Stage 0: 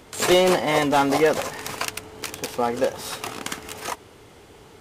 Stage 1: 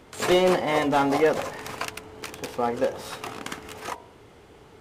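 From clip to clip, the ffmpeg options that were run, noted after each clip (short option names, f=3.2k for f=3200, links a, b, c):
-af "highshelf=f=3.4k:g=-8,bandreject=f=49.65:t=h:w=4,bandreject=f=99.3:t=h:w=4,bandreject=f=148.95:t=h:w=4,bandreject=f=198.6:t=h:w=4,bandreject=f=248.25:t=h:w=4,bandreject=f=297.9:t=h:w=4,bandreject=f=347.55:t=h:w=4,bandreject=f=397.2:t=h:w=4,bandreject=f=446.85:t=h:w=4,bandreject=f=496.5:t=h:w=4,bandreject=f=546.15:t=h:w=4,bandreject=f=595.8:t=h:w=4,bandreject=f=645.45:t=h:w=4,bandreject=f=695.1:t=h:w=4,bandreject=f=744.75:t=h:w=4,bandreject=f=794.4:t=h:w=4,bandreject=f=844.05:t=h:w=4,bandreject=f=893.7:t=h:w=4,bandreject=f=943.35:t=h:w=4,bandreject=f=993:t=h:w=4,volume=-1.5dB"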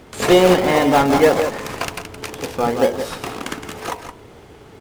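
-filter_complex "[0:a]aecho=1:1:169:0.376,asplit=2[a][b];[b]acrusher=samples=31:mix=1:aa=0.000001:lfo=1:lforange=31:lforate=2,volume=-8dB[c];[a][c]amix=inputs=2:normalize=0,volume=5.5dB"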